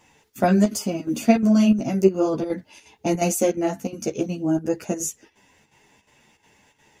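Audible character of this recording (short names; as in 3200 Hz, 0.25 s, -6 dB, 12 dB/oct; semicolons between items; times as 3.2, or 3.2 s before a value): chopped level 2.8 Hz, depth 65%, duty 80%; a shimmering, thickened sound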